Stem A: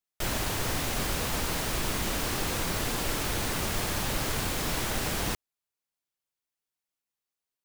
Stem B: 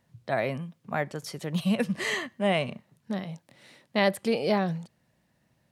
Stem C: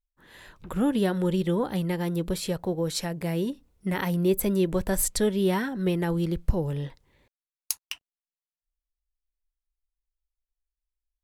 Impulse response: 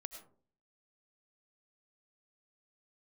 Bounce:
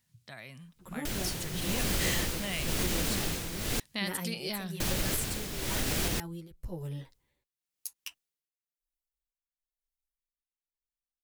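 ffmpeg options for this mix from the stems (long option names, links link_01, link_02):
-filter_complex "[0:a]equalizer=frequency=1000:width=1:gain=-7.5,adelay=850,volume=-3dB,asplit=3[link_01][link_02][link_03];[link_01]atrim=end=3.8,asetpts=PTS-STARTPTS,afade=type=out:start_time=3.796:duration=0.004:curve=hsin[link_04];[link_02]atrim=start=3.8:end=4.8,asetpts=PTS-STARTPTS,volume=0[link_05];[link_03]atrim=start=4.8,asetpts=PTS-STARTPTS,afade=type=in:duration=0.004:curve=hsin[link_06];[link_04][link_05][link_06]concat=n=3:v=0:a=1[link_07];[1:a]equalizer=frequency=520:width_type=o:width=2.2:gain=-13,acompressor=threshold=-44dB:ratio=2,highshelf=frequency=3300:gain=12,volume=-6.5dB[link_08];[2:a]highshelf=frequency=5300:gain=11.5,asplit=2[link_09][link_10];[link_10]adelay=9.5,afreqshift=-2.4[link_11];[link_09][link_11]amix=inputs=2:normalize=1,adelay=150,volume=-14dB[link_12];[link_07][link_12]amix=inputs=2:normalize=0,tremolo=f=1:d=0.76,alimiter=level_in=3.5dB:limit=-24dB:level=0:latency=1:release=215,volume=-3.5dB,volume=0dB[link_13];[link_08][link_13]amix=inputs=2:normalize=0,dynaudnorm=framelen=180:gausssize=13:maxgain=8dB"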